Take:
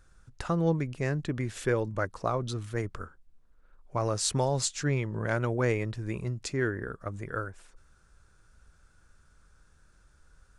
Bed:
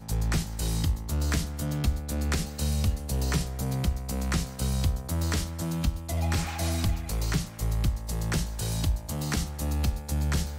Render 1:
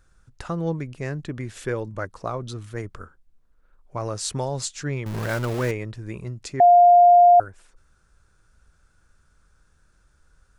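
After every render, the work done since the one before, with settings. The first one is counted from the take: 5.06–5.71 zero-crossing step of -27.5 dBFS; 6.6–7.4 bleep 704 Hz -9 dBFS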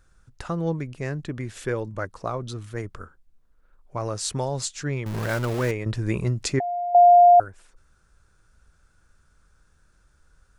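5.86–6.95 negative-ratio compressor -24 dBFS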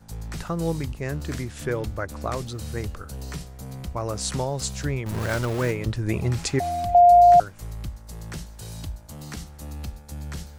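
add bed -7.5 dB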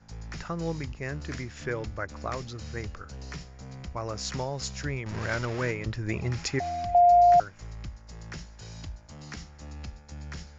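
rippled Chebyshev low-pass 7100 Hz, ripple 6 dB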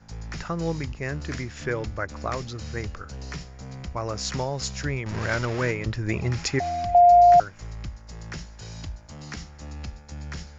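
gain +4 dB

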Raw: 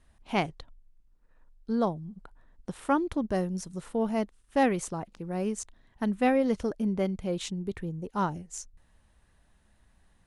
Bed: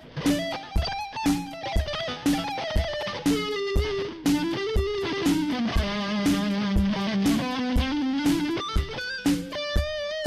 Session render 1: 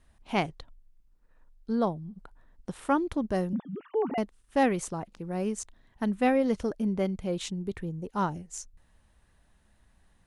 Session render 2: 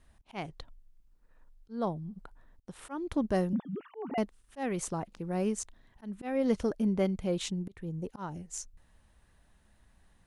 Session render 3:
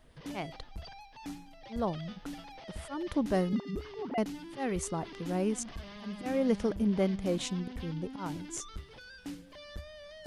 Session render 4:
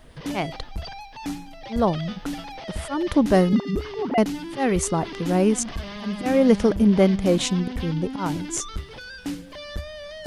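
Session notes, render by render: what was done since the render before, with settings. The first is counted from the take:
1.74–2.16 bell 6900 Hz -12 dB 0.25 oct; 3.53–4.18 sine-wave speech
auto swell 0.282 s
add bed -19 dB
gain +11.5 dB

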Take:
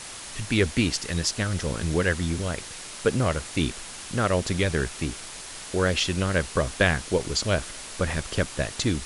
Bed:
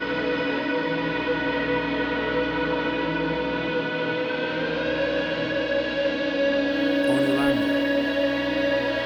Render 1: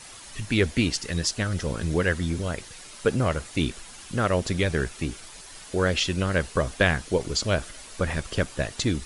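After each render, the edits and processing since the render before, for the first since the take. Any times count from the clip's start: denoiser 8 dB, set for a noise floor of -40 dBFS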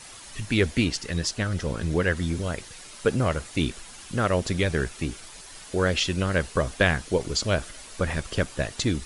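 0.84–2.17 high shelf 5700 Hz -4.5 dB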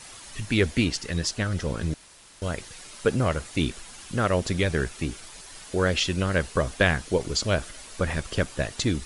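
1.94–2.42 room tone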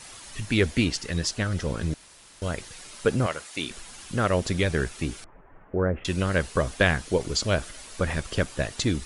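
3.26–3.71 HPF 740 Hz 6 dB/oct; 5.24–6.05 Gaussian blur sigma 6.1 samples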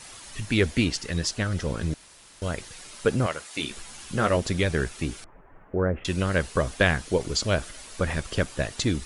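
3.49–4.37 doubler 14 ms -6 dB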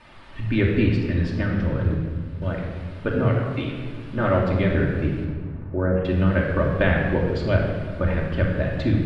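air absorption 430 m; shoebox room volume 2200 m³, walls mixed, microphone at 2.6 m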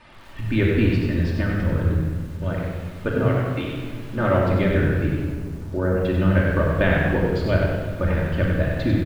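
echo 0.115 s -23 dB; lo-fi delay 95 ms, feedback 35%, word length 8-bit, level -5 dB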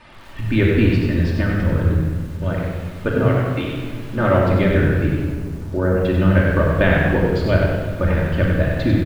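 gain +3.5 dB

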